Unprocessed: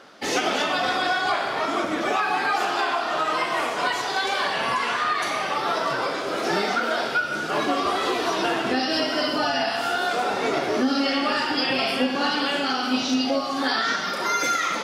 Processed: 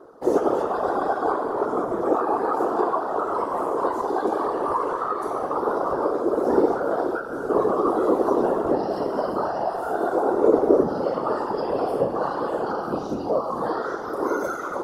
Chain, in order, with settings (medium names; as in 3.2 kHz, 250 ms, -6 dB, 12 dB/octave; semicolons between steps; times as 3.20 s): FFT filter 120 Hz 0 dB, 290 Hz -8 dB, 410 Hz +13 dB, 590 Hz 0 dB, 1.1 kHz +1 dB, 2.3 kHz -29 dB, 5 kHz -21 dB, 11 kHz -7 dB; whisper effect